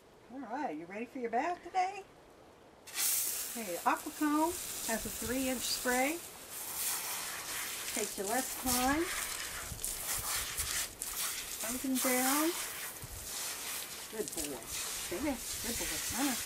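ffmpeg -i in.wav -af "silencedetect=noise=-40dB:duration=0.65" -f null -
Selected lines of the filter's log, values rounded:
silence_start: 2.01
silence_end: 2.88 | silence_duration: 0.87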